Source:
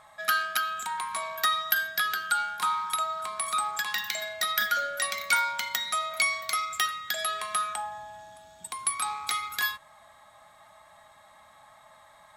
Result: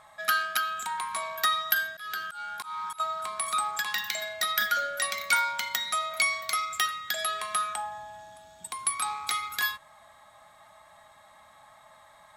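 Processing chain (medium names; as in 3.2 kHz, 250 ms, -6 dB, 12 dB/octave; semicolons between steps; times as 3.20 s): 1.82–3.00 s: slow attack 256 ms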